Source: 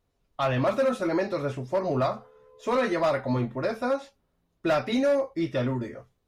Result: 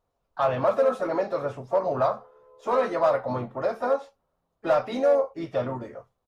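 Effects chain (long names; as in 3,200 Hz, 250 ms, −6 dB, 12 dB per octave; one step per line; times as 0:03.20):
flat-topped bell 810 Hz +9.5 dB
pitch-shifted copies added −3 semitones −13 dB, +4 semitones −15 dB
level −6.5 dB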